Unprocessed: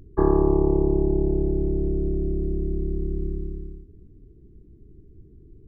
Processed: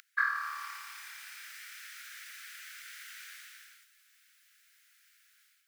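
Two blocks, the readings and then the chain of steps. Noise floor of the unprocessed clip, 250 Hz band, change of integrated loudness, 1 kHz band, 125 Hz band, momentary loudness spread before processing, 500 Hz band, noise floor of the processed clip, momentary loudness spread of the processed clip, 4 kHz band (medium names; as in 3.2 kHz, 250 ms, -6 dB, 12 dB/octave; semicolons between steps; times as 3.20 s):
-50 dBFS, under -40 dB, -15.5 dB, -5.5 dB, under -40 dB, 12 LU, under -40 dB, -69 dBFS, 18 LU, no reading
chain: steep high-pass 1.4 kHz 72 dB/octave; level rider gain up to 10 dB; trim +17.5 dB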